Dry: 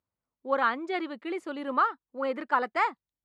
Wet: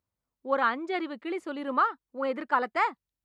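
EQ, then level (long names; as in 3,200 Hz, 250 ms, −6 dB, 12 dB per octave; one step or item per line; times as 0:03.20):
low-shelf EQ 93 Hz +8.5 dB
0.0 dB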